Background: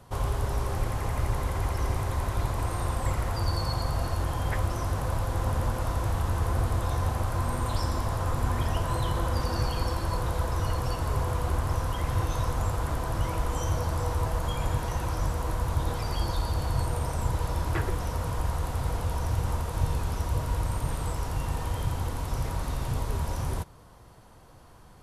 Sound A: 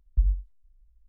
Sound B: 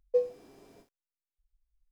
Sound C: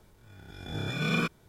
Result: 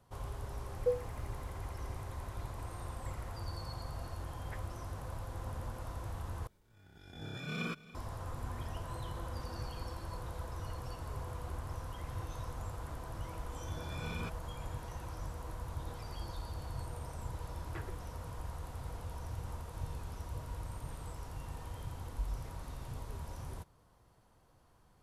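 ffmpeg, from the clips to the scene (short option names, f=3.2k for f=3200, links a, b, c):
-filter_complex "[3:a]asplit=2[a][b];[0:a]volume=-14dB[c];[a]aecho=1:1:285:0.126[d];[b]alimiter=limit=-21.5dB:level=0:latency=1:release=71[e];[c]asplit=2[f][g];[f]atrim=end=6.474[h];[d]atrim=end=1.48,asetpts=PTS-STARTPTS,volume=-10.5dB[i];[g]atrim=start=7.946[j];[2:a]atrim=end=1.91,asetpts=PTS-STARTPTS,volume=-5dB,afade=t=in:d=0.004:c=hsin,afade=t=out:st=1.906:d=0.004:c=hsin,adelay=720[k];[e]atrim=end=1.48,asetpts=PTS-STARTPTS,volume=-12.5dB,afade=t=in:d=0.004:c=hsin,afade=t=out:st=1.476:d=0.004:c=hsin,adelay=13020[l];[1:a]atrim=end=1.08,asetpts=PTS-STARTPTS,volume=-16dB,afade=t=in:d=0.004:c=hsin,afade=t=out:st=1.076:d=0.004:c=hsin,adelay=22010[m];[h][i]acrossfade=d=0.004:c1=hsin:c2=hsin[n];[n][j]acrossfade=d=0.004:c1=hsin:c2=hsin[o];[o][k][l][m]amix=inputs=4:normalize=0"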